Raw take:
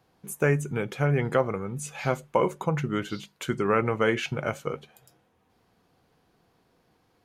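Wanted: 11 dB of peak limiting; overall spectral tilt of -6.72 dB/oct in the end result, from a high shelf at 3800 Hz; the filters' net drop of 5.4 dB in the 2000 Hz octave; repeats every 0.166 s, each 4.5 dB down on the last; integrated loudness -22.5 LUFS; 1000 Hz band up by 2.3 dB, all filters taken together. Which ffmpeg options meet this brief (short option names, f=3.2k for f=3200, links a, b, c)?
-af "equalizer=f=1k:t=o:g=6,equalizer=f=2k:t=o:g=-9,highshelf=f=3.8k:g=-5,alimiter=limit=-17.5dB:level=0:latency=1,aecho=1:1:166|332|498|664|830|996|1162|1328|1494:0.596|0.357|0.214|0.129|0.0772|0.0463|0.0278|0.0167|0.01,volume=6.5dB"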